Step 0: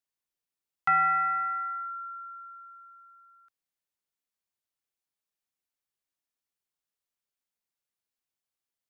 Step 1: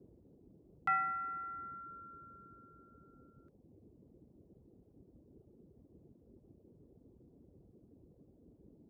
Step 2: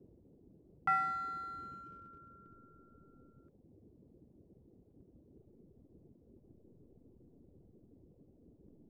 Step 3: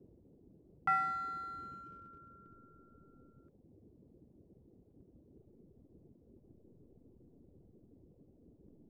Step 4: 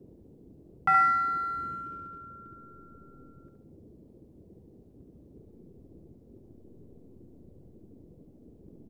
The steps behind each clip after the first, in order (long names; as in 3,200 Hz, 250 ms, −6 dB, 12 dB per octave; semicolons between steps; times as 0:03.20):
noise in a band 44–400 Hz −52 dBFS; reverb reduction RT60 0.79 s; level −8 dB
high-shelf EQ 2,400 Hz −12 dB; in parallel at −4.5 dB: slack as between gear wheels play −44.5 dBFS
no processing that can be heard
repeating echo 70 ms, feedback 37%, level −5 dB; level +7.5 dB